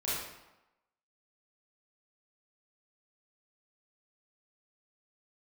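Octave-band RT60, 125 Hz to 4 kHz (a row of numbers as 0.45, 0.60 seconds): 0.85, 0.95, 0.95, 1.0, 0.85, 0.70 seconds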